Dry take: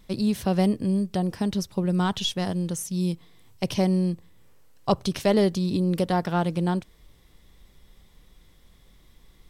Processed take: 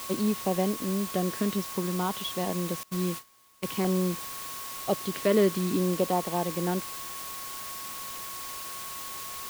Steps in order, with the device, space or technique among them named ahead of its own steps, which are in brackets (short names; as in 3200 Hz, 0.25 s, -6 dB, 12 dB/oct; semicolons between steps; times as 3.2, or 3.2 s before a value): shortwave radio (BPF 260–2500 Hz; tremolo 0.71 Hz, depth 41%; LFO notch saw down 0.52 Hz 600–2000 Hz; whine 1100 Hz -45 dBFS; white noise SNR 9 dB); 2.83–3.68 gate -37 dBFS, range -22 dB; gain +3 dB